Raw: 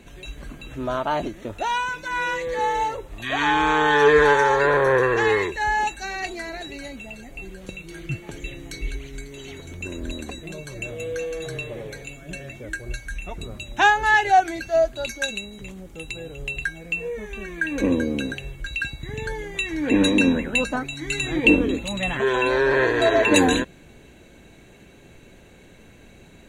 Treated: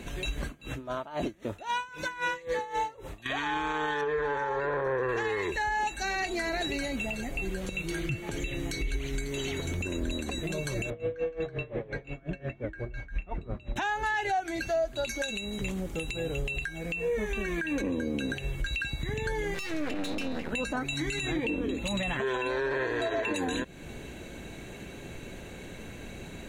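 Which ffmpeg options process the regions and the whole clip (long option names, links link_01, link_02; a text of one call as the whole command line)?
ffmpeg -i in.wav -filter_complex "[0:a]asettb=1/sr,asplit=3[link_01][link_02][link_03];[link_01]atrim=end=0.454[link_04];[link_02]atrim=start=0.45:end=3.26,asetpts=PTS-STARTPTS,afade=type=in:duration=0.004:curve=qsin,afade=type=out:start_time=2.806:duration=0.004:curve=qsin,highpass=54,aeval=exprs='val(0)*pow(10,-24*(0.5-0.5*cos(2*PI*3.8*n/s))/20)':channel_layout=same[link_05];[link_03]atrim=start=3.256[link_06];[link_04][link_05]acrossfade=duration=0.004:curve1=hsin:curve2=qsin[link_07];[link_07][link_06]acrossfade=duration=0.004:curve1=qsin:curve2=hsin,asettb=1/sr,asplit=3[link_08][link_09][link_10];[link_08]atrim=end=4.014[link_11];[link_09]atrim=start=4.01:end=5.09,asetpts=PTS-STARTPTS,afade=type=in:duration=0.004:curve=qsin,afade=type=out:start_time=1.076:duration=0.004:curve=qsin,lowpass=frequency=1600:poles=1,bandreject=frequency=60:width_type=h:width=6,bandreject=frequency=120:width_type=h:width=6,bandreject=frequency=180:width_type=h:width=6,bandreject=frequency=240:width_type=h:width=6,bandreject=frequency=300:width_type=h:width=6,bandreject=frequency=360:width_type=h:width=6,bandreject=frequency=420:width_type=h:width=6[link_12];[link_10]atrim=start=5.086[link_13];[link_11][link_12]acrossfade=duration=0.004:curve1=hsin:curve2=qsin[link_14];[link_14][link_13]acrossfade=duration=0.004:curve1=qsin:curve2=hsin,asettb=1/sr,asplit=3[link_15][link_16][link_17];[link_15]atrim=end=10.904[link_18];[link_16]atrim=start=10.9:end=13.76,asetpts=PTS-STARTPTS,afade=type=in:duration=0.004:curve=qsin,afade=type=out:start_time=2.856:duration=0.004:curve=qsin,lowpass=1900,aeval=exprs='val(0)*pow(10,-21*(0.5-0.5*cos(2*PI*5.7*n/s))/20)':channel_layout=same[link_19];[link_17]atrim=start=13.756[link_20];[link_18][link_19]acrossfade=duration=0.004:curve1=hsin:curve2=qsin[link_21];[link_21][link_20]acrossfade=duration=0.004:curve1=qsin:curve2=hsin,asettb=1/sr,asplit=3[link_22][link_23][link_24];[link_22]atrim=end=19.544[link_25];[link_23]atrim=start=19.54:end=20.52,asetpts=PTS-STARTPTS,afade=type=in:duration=0.004:curve=qsin,afade=type=out:start_time=0.976:duration=0.004:curve=qsin,highpass=frequency=85:width=0.5412,highpass=frequency=85:width=1.3066,aeval=exprs='max(val(0),0)':channel_layout=same[link_26];[link_24]atrim=start=20.516[link_27];[link_25][link_26]acrossfade=duration=0.004:curve1=hsin:curve2=qsin[link_28];[link_28][link_27]acrossfade=duration=0.004:curve1=qsin:curve2=hsin,acompressor=threshold=-33dB:ratio=3,alimiter=level_in=4dB:limit=-24dB:level=0:latency=1:release=98,volume=-4dB,volume=6dB" out.wav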